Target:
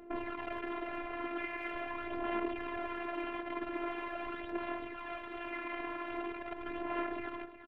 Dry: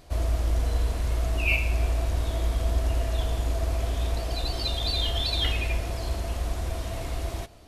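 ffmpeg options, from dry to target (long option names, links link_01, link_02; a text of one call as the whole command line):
ffmpeg -i in.wav -af "aemphasis=mode=production:type=cd,bandreject=frequency=60:width_type=h:width=6,bandreject=frequency=120:width_type=h:width=6,bandreject=frequency=180:width_type=h:width=6,bandreject=frequency=240:width_type=h:width=6,bandreject=frequency=300:width_type=h:width=6,alimiter=limit=-21dB:level=0:latency=1:release=41,tremolo=f=1:d=0.51,aeval=exprs='(mod(37.6*val(0)+1,2)-1)/37.6':channel_layout=same,adynamicsmooth=sensitivity=5.5:basefreq=1000,highpass=frequency=530:width_type=q:width=0.5412,highpass=frequency=530:width_type=q:width=1.307,lowpass=frequency=3100:width_type=q:width=0.5176,lowpass=frequency=3100:width_type=q:width=0.7071,lowpass=frequency=3100:width_type=q:width=1.932,afreqshift=-340,aphaser=in_gain=1:out_gain=1:delay=3.9:decay=0.5:speed=0.43:type=sinusoidal,aecho=1:1:362:0.237,afftfilt=real='hypot(re,im)*cos(PI*b)':imag='0':win_size=512:overlap=0.75,volume=7.5dB" out.wav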